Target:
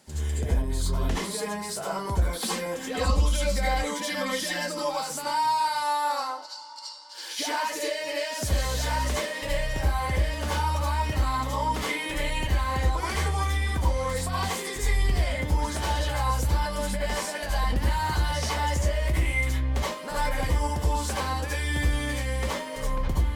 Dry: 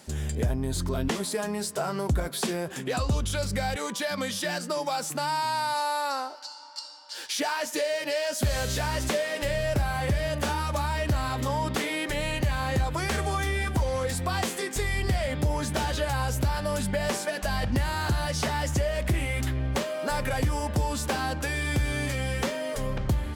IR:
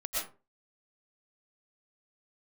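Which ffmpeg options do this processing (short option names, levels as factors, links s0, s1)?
-filter_complex "[0:a]asettb=1/sr,asplit=3[s0][s1][s2];[s0]atrim=end=2.294[s3];[s1]atrim=start=2.29:end=4.83,asetpts=PTS-STARTPTS,afade=t=in:d=0.004:c=qsin,afade=t=out:st=2.536:d=0.004:c=qsin,aecho=1:1:3.8:0.71,atrim=end_sample=112014[s4];[s2]atrim=start=4.826[s5];[s3][s4]acrossfade=d=0.004:c1=hsin:c2=qsin[s6];[s6][s5]acrossfade=d=0.004:c1=qsin:c2=hsin[s7];[1:a]atrim=start_sample=2205,asetrate=70560,aresample=44100[s8];[s7][s8]afir=irnorm=-1:irlink=0"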